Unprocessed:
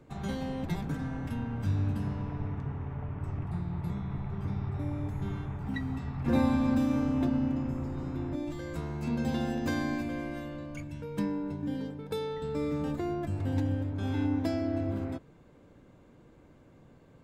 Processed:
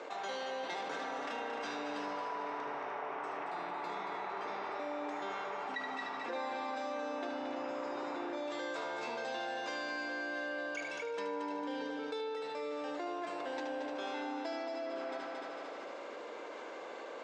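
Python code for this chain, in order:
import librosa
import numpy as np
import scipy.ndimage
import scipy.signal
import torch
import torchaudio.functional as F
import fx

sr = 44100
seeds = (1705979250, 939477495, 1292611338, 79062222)

p1 = scipy.signal.sosfilt(scipy.signal.butter(4, 470.0, 'highpass', fs=sr, output='sos'), x)
p2 = fx.rider(p1, sr, range_db=4, speed_s=0.5)
p3 = scipy.signal.sosfilt(scipy.signal.butter(4, 6300.0, 'lowpass', fs=sr, output='sos'), p2)
p4 = p3 + fx.echo_heads(p3, sr, ms=75, heads='first and third', feedback_pct=64, wet_db=-8.5, dry=0)
p5 = fx.env_flatten(p4, sr, amount_pct=70)
y = p5 * 10.0 ** (-2.5 / 20.0)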